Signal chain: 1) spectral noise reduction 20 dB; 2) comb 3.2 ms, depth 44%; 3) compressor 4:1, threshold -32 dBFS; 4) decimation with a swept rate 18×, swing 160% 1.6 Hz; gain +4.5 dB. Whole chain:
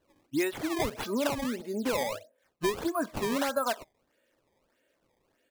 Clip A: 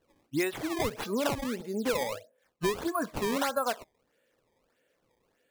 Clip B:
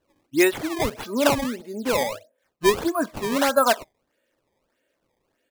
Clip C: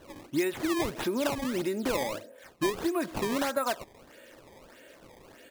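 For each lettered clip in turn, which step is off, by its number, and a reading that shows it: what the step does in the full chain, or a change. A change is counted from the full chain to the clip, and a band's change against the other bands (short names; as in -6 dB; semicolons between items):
2, 125 Hz band +2.0 dB; 3, mean gain reduction 5.5 dB; 1, momentary loudness spread change +2 LU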